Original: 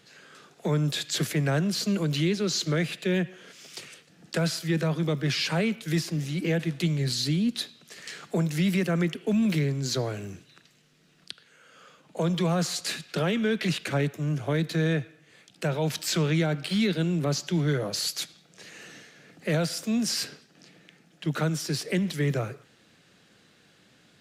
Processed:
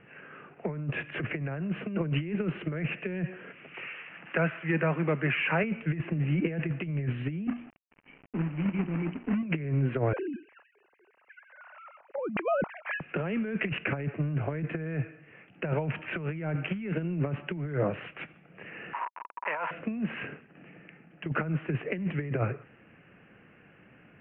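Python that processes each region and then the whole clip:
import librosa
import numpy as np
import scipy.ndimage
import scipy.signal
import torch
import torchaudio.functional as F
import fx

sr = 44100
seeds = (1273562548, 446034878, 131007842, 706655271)

y = fx.chain(x, sr, fx.crossing_spikes(level_db=-27.0),
    fx.lowpass(hz=2300.0, slope=12),
    fx.tilt_eq(slope=3.0), at=(3.74, 5.64))
y = fx.chain(y, sr, fx.formant_cascade(vowel='i'),
    fx.hum_notches(base_hz=60, count=9),
    fx.quant_companded(bits=4), at=(7.47, 9.43))
y = fx.chain(y, sr, fx.sine_speech(),
    fx.resample_linear(factor=8), at=(10.13, 13.01))
y = fx.chain(y, sr, fx.delta_hold(step_db=-40.0),
    fx.highpass_res(hz=970.0, q=12.0),
    fx.over_compress(threshold_db=-34.0, ratio=-1.0), at=(18.93, 19.71))
y = scipy.signal.sosfilt(scipy.signal.butter(16, 2800.0, 'lowpass', fs=sr, output='sos'), y)
y = fx.low_shelf(y, sr, hz=110.0, db=3.5)
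y = fx.over_compress(y, sr, threshold_db=-28.0, ratio=-0.5)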